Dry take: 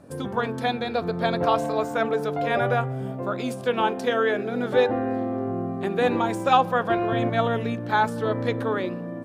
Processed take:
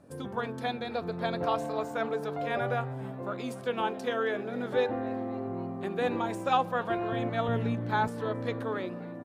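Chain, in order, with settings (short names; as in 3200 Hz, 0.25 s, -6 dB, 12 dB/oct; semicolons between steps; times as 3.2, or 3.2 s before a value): 7.48–8.08 low shelf 220 Hz +10 dB; frequency-shifting echo 0.269 s, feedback 63%, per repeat +150 Hz, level -22 dB; gain -7.5 dB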